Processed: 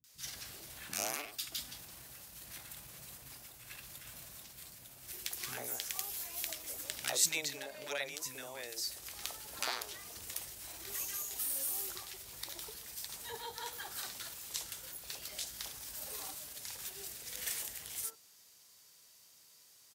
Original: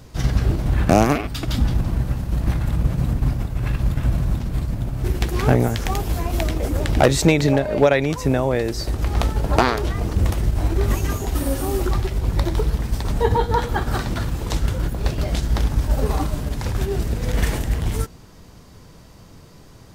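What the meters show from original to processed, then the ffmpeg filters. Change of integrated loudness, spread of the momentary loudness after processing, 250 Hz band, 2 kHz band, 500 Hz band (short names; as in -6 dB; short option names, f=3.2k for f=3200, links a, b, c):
-18.0 dB, 14 LU, -34.5 dB, -15.5 dB, -27.5 dB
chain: -filter_complex "[0:a]aderivative,acrossover=split=260|1100[a][b][c];[c]adelay=40[d];[b]adelay=90[e];[a][e][d]amix=inputs=3:normalize=0,volume=-3.5dB"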